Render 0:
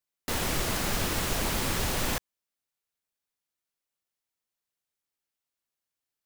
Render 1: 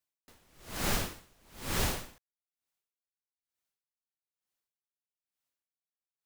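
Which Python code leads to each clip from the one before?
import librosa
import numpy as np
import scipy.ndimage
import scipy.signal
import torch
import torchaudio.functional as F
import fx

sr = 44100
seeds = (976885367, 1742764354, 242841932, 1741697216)

y = x * 10.0 ** (-37 * (0.5 - 0.5 * np.cos(2.0 * np.pi * 1.1 * np.arange(len(x)) / sr)) / 20.0)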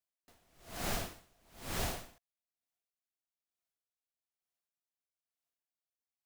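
y = fx.peak_eq(x, sr, hz=690.0, db=9.0, octaves=0.21)
y = y * 10.0 ** (-6.0 / 20.0)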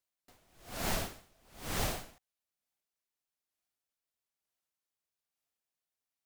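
y = fx.vibrato_shape(x, sr, shape='saw_up', rate_hz=5.4, depth_cents=250.0)
y = y * 10.0 ** (2.5 / 20.0)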